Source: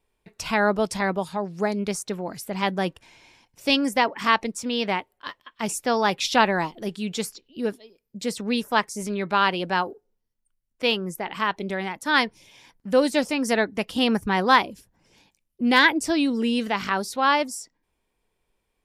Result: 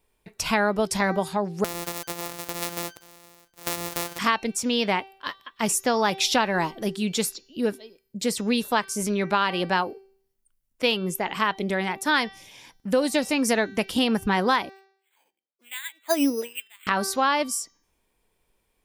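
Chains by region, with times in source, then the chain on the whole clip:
1.64–4.19 sample sorter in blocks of 256 samples + tone controls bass -13 dB, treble +4 dB + compressor 3:1, threshold -31 dBFS
14.69–16.87 LFO high-pass sine 1.1 Hz 330–4600 Hz + careless resampling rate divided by 8×, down filtered, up hold + upward expander, over -41 dBFS
whole clip: high shelf 9000 Hz +7.5 dB; de-hum 387.5 Hz, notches 18; compressor 6:1, threshold -21 dBFS; gain +3 dB

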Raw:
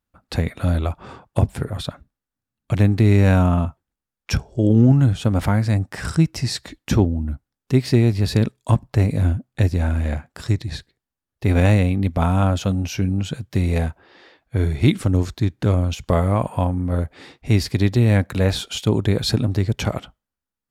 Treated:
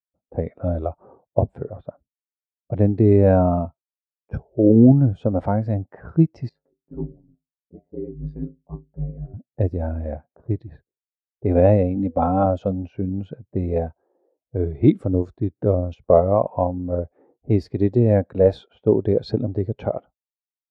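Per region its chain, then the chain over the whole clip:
6.49–9.34 low shelf 390 Hz +3.5 dB + metallic resonator 100 Hz, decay 0.39 s, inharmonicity 0.03 + ring modulator 49 Hz
11.95–12.46 comb 3.8 ms, depth 56% + de-hum 163.3 Hz, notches 11
whole clip: low-pass opened by the level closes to 540 Hz, open at -14 dBFS; bell 560 Hz +14 dB 2.3 oct; spectral expander 1.5:1; gain -7.5 dB

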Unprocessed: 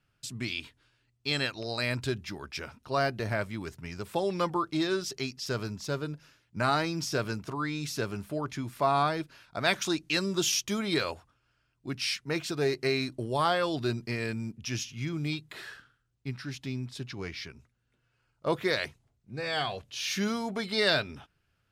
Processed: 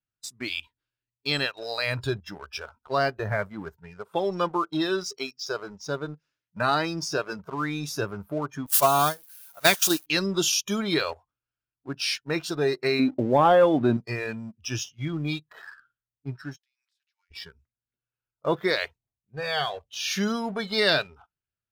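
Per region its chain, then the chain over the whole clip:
3.76–7.39 LPF 10000 Hz + low shelf 180 Hz -5 dB
8.66–10.06 switching spikes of -21.5 dBFS + gate -28 dBFS, range -16 dB + transient shaper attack +6 dB, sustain +1 dB
12.99–13.97 Gaussian blur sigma 2.3 samples + small resonant body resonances 260/540/760 Hz, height 10 dB, ringing for 25 ms + mismatched tape noise reduction encoder only
16.56–17.31 HPF 1400 Hz 24 dB/oct + compressor 8:1, threshold -56 dBFS
whole clip: spectral noise reduction 19 dB; sample leveller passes 1

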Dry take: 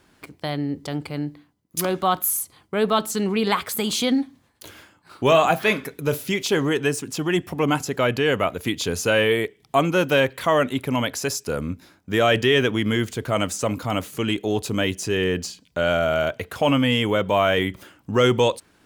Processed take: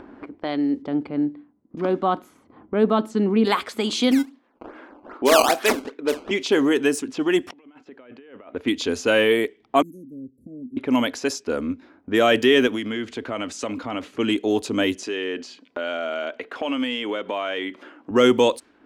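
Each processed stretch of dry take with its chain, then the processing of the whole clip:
0.82–3.45 LPF 1200 Hz 6 dB/oct + bell 170 Hz +7.5 dB 0.95 oct
4.11–6.31 BPF 290–7500 Hz + decimation with a swept rate 14×, swing 160% 2.5 Hz
7.5–8.55 weighting filter D + negative-ratio compressor -26 dBFS + flipped gate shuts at -22 dBFS, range -28 dB
9.82–10.77 inverse Chebyshev band-stop 950–3100 Hz, stop band 80 dB + low shelf 360 Hz -11 dB
12.67–14.16 high shelf 2300 Hz +8 dB + compressor, threshold -23 dBFS + three-band expander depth 40%
15.03–18.11 HPF 260 Hz + high shelf 2400 Hz +8 dB + compressor 3:1, threshold -26 dBFS
whole clip: resonant low shelf 200 Hz -7.5 dB, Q 3; low-pass opened by the level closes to 1100 Hz, open at -16.5 dBFS; upward compressor, threshold -31 dBFS

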